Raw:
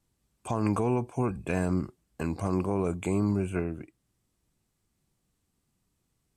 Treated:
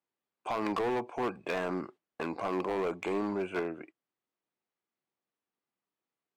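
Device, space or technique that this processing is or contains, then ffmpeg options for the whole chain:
walkie-talkie: -af "highpass=440,lowpass=2800,asoftclip=type=hard:threshold=-31.5dB,agate=range=-12dB:threshold=-56dB:ratio=16:detection=peak,volume=4.5dB"

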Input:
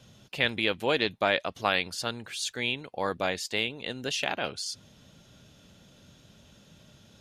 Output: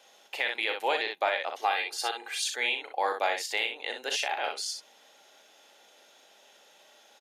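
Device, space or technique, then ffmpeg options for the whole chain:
laptop speaker: -filter_complex "[0:a]highshelf=frequency=9900:gain=5.5,asettb=1/sr,asplit=3[link_01][link_02][link_03];[link_01]atrim=end=1.614[link_04];[link_02]atrim=start=1.61:end=2.44,asetpts=PTS-STARTPTS,afade=type=in:duration=0.004:curve=qsin,afade=type=out:start_time=0.826:duration=0.004:curve=qsin,aecho=1:1:2.5:0.57,atrim=end_sample=36603[link_05];[link_03]atrim=start=2.436[link_06];[link_04][link_05]acrossfade=duration=0.004:curve1=hsin:curve2=qsin[link_07];[link_07][link_06]acrossfade=duration=0.004:curve1=qsin:curve2=hsin,highpass=frequency=400:width=0.5412,highpass=frequency=400:width=1.3066,equalizer=frequency=810:width_type=o:width=0.32:gain=11,equalizer=frequency=2000:width_type=o:width=0.59:gain=6,aecho=1:1:37|62:0.335|0.473,alimiter=limit=-14dB:level=0:latency=1:release=285,volume=-1.5dB"

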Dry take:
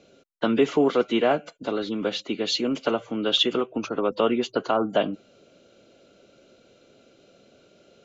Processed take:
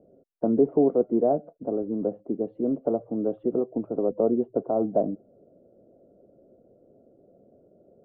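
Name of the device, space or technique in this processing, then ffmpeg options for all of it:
under water: -filter_complex "[0:a]lowpass=frequency=630:width=0.5412,lowpass=frequency=630:width=1.3066,equalizer=frequency=690:width_type=o:width=0.27:gain=4.5,asettb=1/sr,asplit=3[link_01][link_02][link_03];[link_01]atrim=end=1.494[link_04];[link_02]atrim=start=1.49:end=2.48,asetpts=PTS-STARTPTS,afade=type=in:duration=0.004:curve=qsin,afade=type=out:start_time=0.986:duration=0.004:curve=qsin,lowpass=2100[link_05];[link_03]atrim=start=2.476[link_06];[link_04][link_05]acrossfade=duration=0.004:curve1=hsin:curve2=qsin[link_07];[link_07][link_06]acrossfade=duration=0.004:curve1=qsin:curve2=hsin"

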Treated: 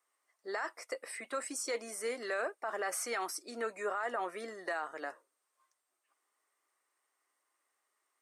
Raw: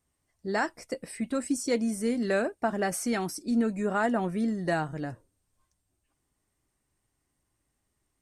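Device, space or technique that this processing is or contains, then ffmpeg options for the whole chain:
laptop speaker: -af "highpass=frequency=430:width=0.5412,highpass=frequency=430:width=1.3066,equalizer=frequency=1200:width_type=o:width=0.54:gain=9.5,equalizer=frequency=2000:width_type=o:width=0.45:gain=5,alimiter=limit=-24dB:level=0:latency=1:release=37,volume=-2.5dB"

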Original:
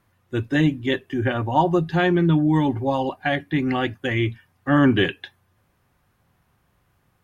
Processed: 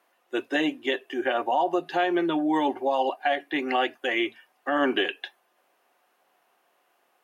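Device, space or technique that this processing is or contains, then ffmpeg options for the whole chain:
laptop speaker: -af "highpass=frequency=340:width=0.5412,highpass=frequency=340:width=1.3066,equalizer=frequency=700:width_type=o:width=0.44:gain=7,equalizer=frequency=2800:width_type=o:width=0.25:gain=5,alimiter=limit=-14.5dB:level=0:latency=1:release=102"

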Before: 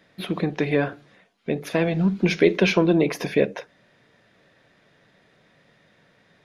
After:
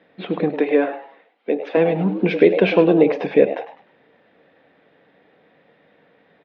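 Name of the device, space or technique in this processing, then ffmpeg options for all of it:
frequency-shifting delay pedal into a guitar cabinet: -filter_complex "[0:a]asettb=1/sr,asplit=3[link_01][link_02][link_03];[link_01]atrim=end=0.594[link_04];[link_02]atrim=start=0.59:end=1.77,asetpts=PTS-STARTPTS,afade=type=in:duration=0.004:curve=qsin,afade=type=out:start_time=1.176:duration=0.004:curve=qsin,highpass=frequency=260:width=0.5412,highpass=frequency=260:width=1.3066[link_05];[link_03]atrim=start=1.766[link_06];[link_04][link_05]acrossfade=duration=0.004:curve1=hsin:curve2=qsin[link_07];[link_07][link_06]acrossfade=duration=0.004:curve1=qsin:curve2=hsin,asplit=4[link_08][link_09][link_10][link_11];[link_09]adelay=102,afreqshift=130,volume=-12dB[link_12];[link_10]adelay=204,afreqshift=260,volume=-21.9dB[link_13];[link_11]adelay=306,afreqshift=390,volume=-31.8dB[link_14];[link_08][link_12][link_13][link_14]amix=inputs=4:normalize=0,highpass=85,equalizer=frequency=120:width_type=q:width=4:gain=-10,equalizer=frequency=280:width_type=q:width=4:gain=6,equalizer=frequency=480:width_type=q:width=4:gain=9,equalizer=frequency=790:width_type=q:width=4:gain=6,lowpass=frequency=3400:width=0.5412,lowpass=frequency=3400:width=1.3066"

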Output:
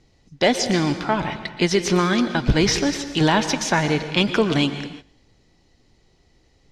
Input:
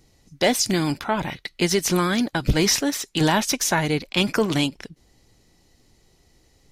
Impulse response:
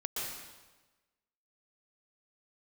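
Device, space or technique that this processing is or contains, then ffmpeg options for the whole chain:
keyed gated reverb: -filter_complex "[0:a]lowpass=5000,asplit=3[link_01][link_02][link_03];[1:a]atrim=start_sample=2205[link_04];[link_02][link_04]afir=irnorm=-1:irlink=0[link_05];[link_03]apad=whole_len=295920[link_06];[link_05][link_06]sidechaingate=range=-17dB:threshold=-49dB:ratio=16:detection=peak,volume=-10dB[link_07];[link_01][link_07]amix=inputs=2:normalize=0"

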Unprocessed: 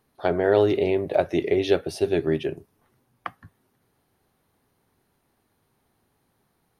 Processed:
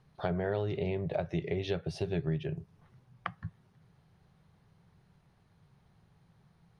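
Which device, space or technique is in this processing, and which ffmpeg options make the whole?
jukebox: -af "lowpass=5800,lowshelf=frequency=210:width_type=q:width=3:gain=7,acompressor=threshold=-33dB:ratio=3"

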